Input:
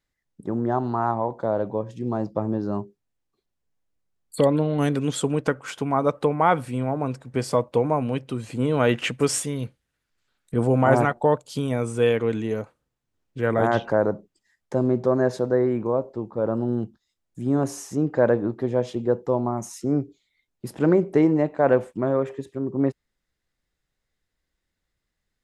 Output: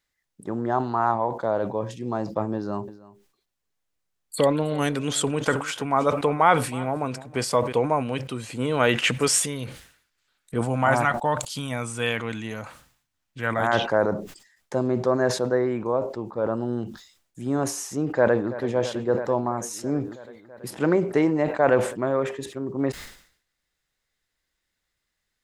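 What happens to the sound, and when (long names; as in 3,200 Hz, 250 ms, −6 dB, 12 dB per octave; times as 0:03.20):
0:02.56–0:07.73: single-tap delay 317 ms −20 dB
0:10.61–0:13.73: parametric band 420 Hz −10.5 dB
0:18.13–0:18.70: delay throw 330 ms, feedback 80%, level −15 dB
whole clip: tilt shelving filter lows −5 dB, about 670 Hz; level that may fall only so fast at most 100 dB per second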